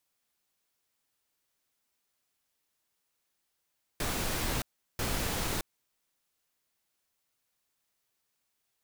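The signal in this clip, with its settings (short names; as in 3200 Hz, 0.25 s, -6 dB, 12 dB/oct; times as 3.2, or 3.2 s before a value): noise bursts pink, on 0.62 s, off 0.37 s, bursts 2, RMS -32 dBFS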